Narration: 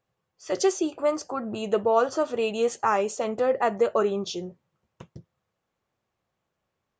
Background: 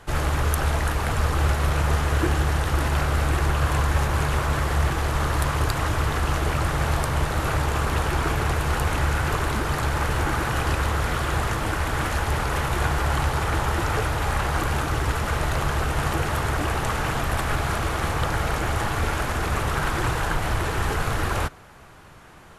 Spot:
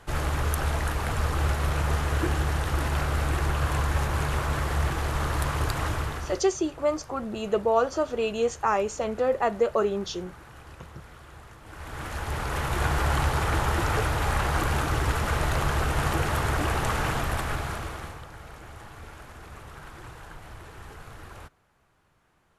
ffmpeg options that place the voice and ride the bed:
ffmpeg -i stem1.wav -i stem2.wav -filter_complex "[0:a]adelay=5800,volume=-1dB[link_01];[1:a]volume=17.5dB,afade=type=out:start_time=5.88:duration=0.56:silence=0.112202,afade=type=in:start_time=11.64:duration=1.36:silence=0.0841395,afade=type=out:start_time=17.03:duration=1.21:silence=0.125893[link_02];[link_01][link_02]amix=inputs=2:normalize=0" out.wav

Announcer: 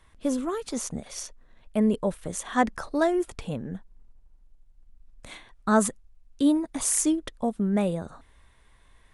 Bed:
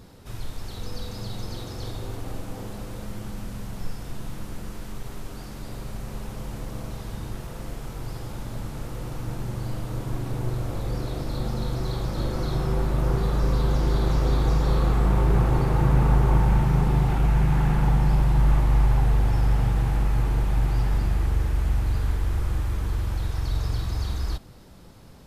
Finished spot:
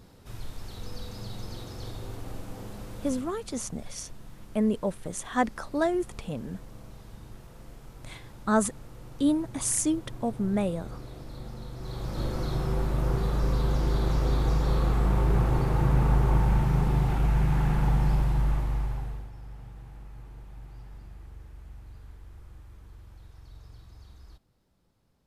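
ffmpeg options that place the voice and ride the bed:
ffmpeg -i stem1.wav -i stem2.wav -filter_complex "[0:a]adelay=2800,volume=-2.5dB[link_01];[1:a]volume=4dB,afade=type=out:start_time=3.08:duration=0.27:silence=0.421697,afade=type=in:start_time=11.76:duration=0.47:silence=0.354813,afade=type=out:start_time=18.07:duration=1.23:silence=0.112202[link_02];[link_01][link_02]amix=inputs=2:normalize=0" out.wav

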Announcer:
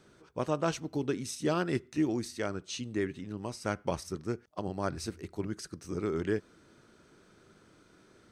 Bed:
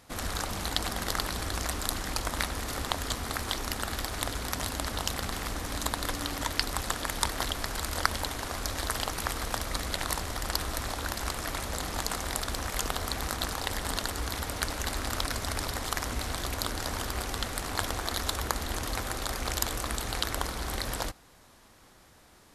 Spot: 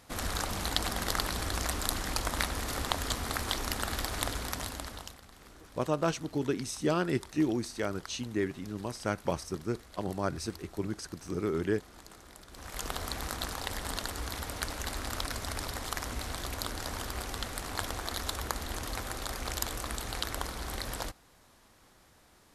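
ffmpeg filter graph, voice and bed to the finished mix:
ffmpeg -i stem1.wav -i stem2.wav -filter_complex "[0:a]adelay=5400,volume=1dB[link_01];[1:a]volume=16dB,afade=type=out:start_time=4.25:duration=0.94:silence=0.1,afade=type=in:start_time=12.5:duration=0.44:silence=0.149624[link_02];[link_01][link_02]amix=inputs=2:normalize=0" out.wav

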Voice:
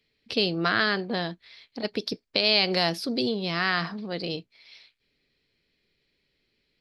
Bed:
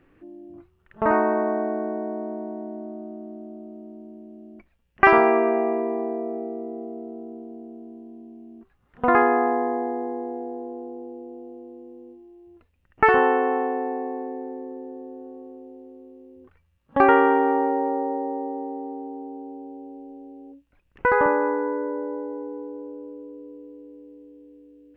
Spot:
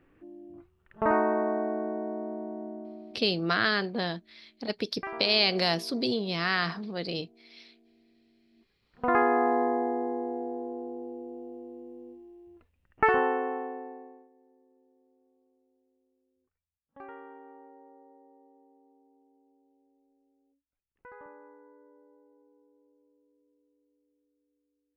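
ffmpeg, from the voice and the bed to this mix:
ffmpeg -i stem1.wav -i stem2.wav -filter_complex "[0:a]adelay=2850,volume=-2dB[link_01];[1:a]volume=16.5dB,afade=type=out:start_time=2.66:duration=0.84:silence=0.11885,afade=type=in:start_time=8.5:duration=1.12:silence=0.0891251,afade=type=out:start_time=12.28:duration=2.01:silence=0.0398107[link_02];[link_01][link_02]amix=inputs=2:normalize=0" out.wav

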